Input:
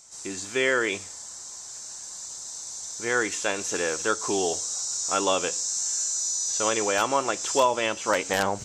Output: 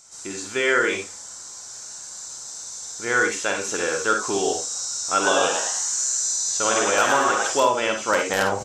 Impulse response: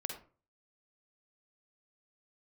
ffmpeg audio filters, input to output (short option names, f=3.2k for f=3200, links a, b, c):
-filter_complex "[0:a]equalizer=f=1.4k:t=o:w=0.25:g=6.5,asplit=3[a][b][c];[a]afade=t=out:st=5.22:d=0.02[d];[b]asplit=6[e][f][g][h][i][j];[f]adelay=110,afreqshift=130,volume=-3.5dB[k];[g]adelay=220,afreqshift=260,volume=-11dB[l];[h]adelay=330,afreqshift=390,volume=-18.6dB[m];[i]adelay=440,afreqshift=520,volume=-26.1dB[n];[j]adelay=550,afreqshift=650,volume=-33.6dB[o];[e][k][l][m][n][o]amix=inputs=6:normalize=0,afade=t=in:st=5.22:d=0.02,afade=t=out:st=7.47:d=0.02[p];[c]afade=t=in:st=7.47:d=0.02[q];[d][p][q]amix=inputs=3:normalize=0[r];[1:a]atrim=start_sample=2205,atrim=end_sample=4410[s];[r][s]afir=irnorm=-1:irlink=0,volume=2.5dB"